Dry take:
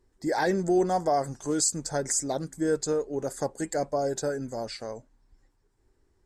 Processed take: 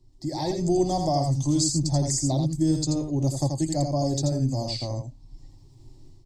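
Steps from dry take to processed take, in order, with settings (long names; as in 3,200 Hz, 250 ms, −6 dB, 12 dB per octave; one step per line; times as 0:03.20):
drawn EQ curve 140 Hz 0 dB, 210 Hz −8 dB, 710 Hz −18 dB, 2,200 Hz −17 dB, 4,500 Hz −8 dB, 10,000 Hz −20 dB
automatic gain control gain up to 12 dB
phaser with its sweep stopped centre 300 Hz, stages 8
single-tap delay 82 ms −5.5 dB
multiband upward and downward compressor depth 40%
level +5 dB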